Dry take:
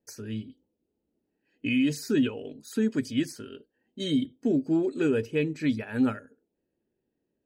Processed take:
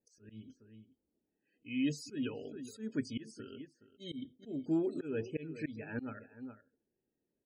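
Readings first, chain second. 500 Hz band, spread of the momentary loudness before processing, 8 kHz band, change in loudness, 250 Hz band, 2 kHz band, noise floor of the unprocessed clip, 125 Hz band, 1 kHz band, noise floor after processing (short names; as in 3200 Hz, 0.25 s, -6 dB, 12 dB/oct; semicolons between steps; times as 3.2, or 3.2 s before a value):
-11.0 dB, 12 LU, -11.0 dB, -11.5 dB, -11.5 dB, -11.5 dB, -81 dBFS, -10.5 dB, -11.0 dB, under -85 dBFS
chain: outdoor echo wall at 72 m, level -16 dB; auto swell 0.228 s; loudest bins only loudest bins 64; gain -6.5 dB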